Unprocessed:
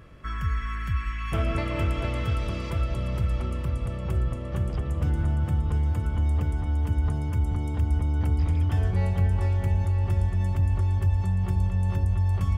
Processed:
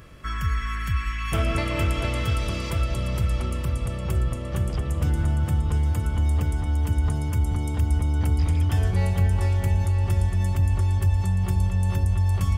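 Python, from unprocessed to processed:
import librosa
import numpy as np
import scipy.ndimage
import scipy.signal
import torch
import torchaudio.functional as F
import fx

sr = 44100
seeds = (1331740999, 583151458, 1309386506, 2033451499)

y = fx.high_shelf(x, sr, hz=3700.0, db=11.0)
y = y * librosa.db_to_amplitude(2.0)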